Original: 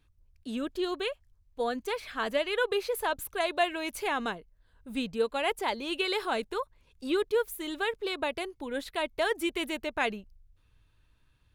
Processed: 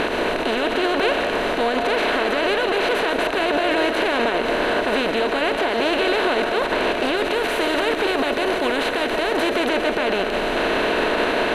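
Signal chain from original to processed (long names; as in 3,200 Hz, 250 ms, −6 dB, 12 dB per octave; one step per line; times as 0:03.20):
compressor on every frequency bin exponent 0.2
0:07.17–0:09.56: high-shelf EQ 6,800 Hz +5.5 dB
brickwall limiter −20 dBFS, peak gain reduction 14 dB
high-frequency loss of the air 79 metres
convolution reverb RT60 0.65 s, pre-delay 100 ms, DRR 6 dB
level +8.5 dB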